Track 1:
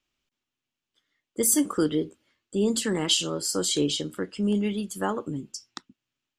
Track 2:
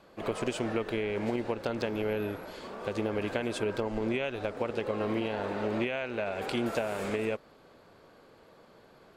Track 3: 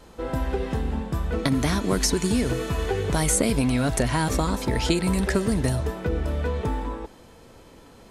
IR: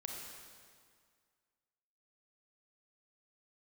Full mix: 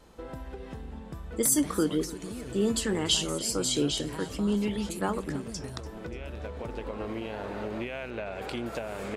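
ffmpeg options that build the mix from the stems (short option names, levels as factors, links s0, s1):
-filter_complex "[0:a]volume=0.75,asplit=3[s0][s1][s2];[s1]volume=0.119[s3];[1:a]acompressor=threshold=0.0112:ratio=2,aeval=exprs='val(0)+0.00316*(sin(2*PI*60*n/s)+sin(2*PI*2*60*n/s)/2+sin(2*PI*3*60*n/s)/3+sin(2*PI*4*60*n/s)/4+sin(2*PI*5*60*n/s)/5)':c=same,adelay=2000,volume=1.33[s4];[2:a]acompressor=threshold=0.0316:ratio=6,volume=0.447[s5];[s2]apad=whole_len=492588[s6];[s4][s6]sidechaincompress=threshold=0.00447:ratio=3:attack=42:release=1310[s7];[s3]aecho=0:1:291|582|873|1164|1455|1746|2037:1|0.51|0.26|0.133|0.0677|0.0345|0.0176[s8];[s0][s7][s5][s8]amix=inputs=4:normalize=0"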